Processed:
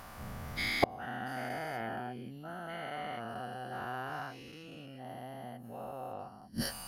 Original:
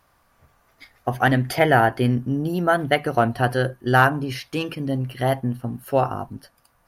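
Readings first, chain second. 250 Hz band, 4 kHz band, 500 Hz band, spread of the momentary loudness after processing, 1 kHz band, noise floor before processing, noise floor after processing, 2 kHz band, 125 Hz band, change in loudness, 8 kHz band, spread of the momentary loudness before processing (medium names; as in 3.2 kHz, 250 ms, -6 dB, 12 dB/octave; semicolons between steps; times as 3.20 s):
-18.5 dB, -9.5 dB, -18.5 dB, 13 LU, -16.5 dB, -63 dBFS, -50 dBFS, -16.0 dB, -22.0 dB, -18.0 dB, -7.0 dB, 11 LU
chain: every event in the spectrogram widened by 480 ms; small resonant body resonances 210/750/2900 Hz, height 8 dB, ringing for 75 ms; inverted gate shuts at -16 dBFS, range -37 dB; trim +6.5 dB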